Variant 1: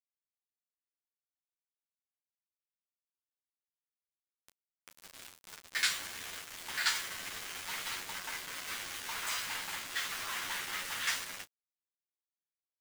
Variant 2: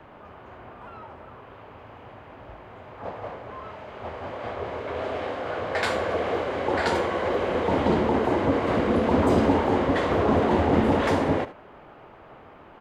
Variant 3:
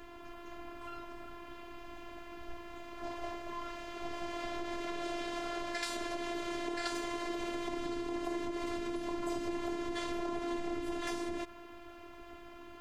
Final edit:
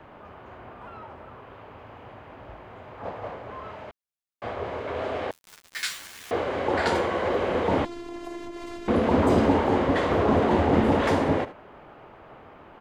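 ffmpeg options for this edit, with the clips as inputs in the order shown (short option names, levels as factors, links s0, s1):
-filter_complex "[0:a]asplit=2[s0][s1];[1:a]asplit=4[s2][s3][s4][s5];[s2]atrim=end=3.912[s6];[s0]atrim=start=3.908:end=4.422[s7];[s3]atrim=start=4.418:end=5.312[s8];[s1]atrim=start=5.308:end=6.312[s9];[s4]atrim=start=6.308:end=7.852[s10];[2:a]atrim=start=7.848:end=8.882[s11];[s5]atrim=start=8.878[s12];[s6][s7]acrossfade=d=0.004:c1=hsin:c2=hsin[s13];[s13][s8]acrossfade=d=0.004:c1=hsin:c2=hsin[s14];[s14][s9]acrossfade=d=0.004:c1=hsin:c2=hsin[s15];[s15][s10]acrossfade=d=0.004:c1=hsin:c2=hsin[s16];[s16][s11]acrossfade=d=0.004:c1=hsin:c2=hsin[s17];[s17][s12]acrossfade=d=0.004:c1=hsin:c2=hsin"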